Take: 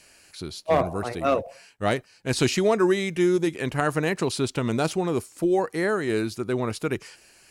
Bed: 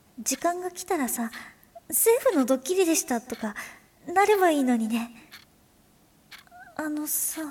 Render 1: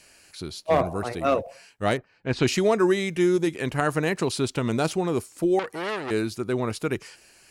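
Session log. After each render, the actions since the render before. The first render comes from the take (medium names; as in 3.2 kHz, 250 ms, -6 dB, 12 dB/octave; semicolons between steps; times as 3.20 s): 1.96–2.46 s: low-pass 1.6 kHz -> 3.6 kHz; 5.59–6.11 s: transformer saturation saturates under 2.4 kHz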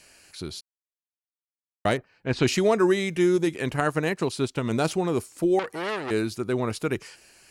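0.61–1.85 s: mute; 3.76–4.71 s: upward expansion, over -37 dBFS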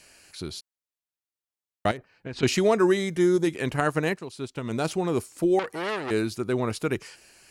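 1.91–2.43 s: compression 12:1, threshold -30 dBFS; 2.97–3.45 s: peaking EQ 2.6 kHz -14.5 dB 0.29 oct; 4.19–5.18 s: fade in linear, from -13.5 dB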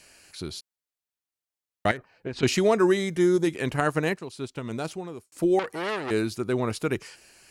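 1.88–2.30 s: peaking EQ 2.1 kHz -> 330 Hz +12 dB 0.39 oct; 4.48–5.32 s: fade out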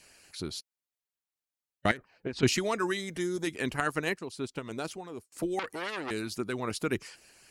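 harmonic-percussive split harmonic -10 dB; dynamic bell 700 Hz, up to -5 dB, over -38 dBFS, Q 0.92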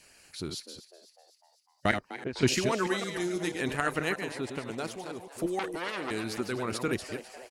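chunks repeated in reverse 160 ms, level -7 dB; frequency-shifting echo 251 ms, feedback 57%, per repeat +130 Hz, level -15 dB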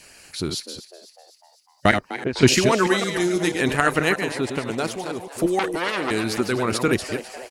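trim +10 dB; peak limiter -1 dBFS, peak gain reduction 2 dB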